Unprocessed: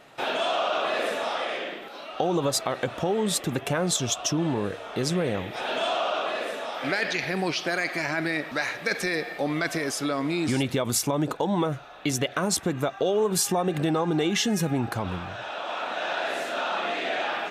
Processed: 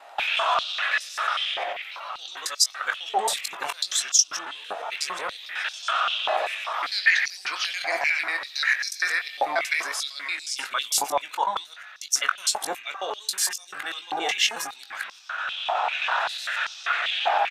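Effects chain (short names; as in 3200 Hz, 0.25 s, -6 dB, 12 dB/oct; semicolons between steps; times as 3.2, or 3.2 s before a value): local time reversal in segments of 91 ms; doubler 21 ms -8.5 dB; stepped high-pass 5.1 Hz 780–5400 Hz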